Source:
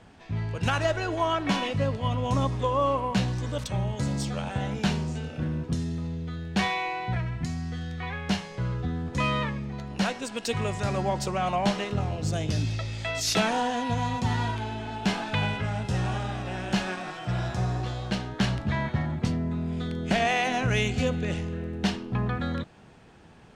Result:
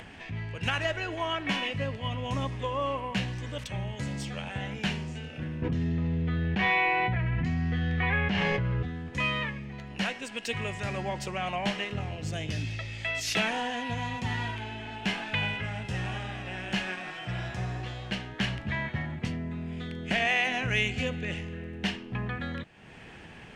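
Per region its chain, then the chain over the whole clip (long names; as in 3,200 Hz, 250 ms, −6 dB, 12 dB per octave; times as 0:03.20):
0:05.62–0:08.83: head-to-tape spacing loss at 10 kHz 25 dB + envelope flattener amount 100%
whole clip: upward compression, threshold −32 dBFS; flat-topped bell 2,300 Hz +8.5 dB 1.1 octaves; level −6 dB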